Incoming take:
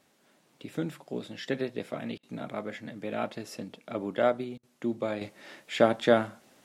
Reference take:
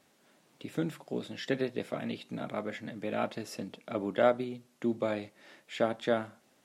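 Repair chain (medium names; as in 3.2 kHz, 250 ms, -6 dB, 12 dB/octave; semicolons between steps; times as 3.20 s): interpolate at 2.18/4.58 s, 50 ms; gain correction -7 dB, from 5.21 s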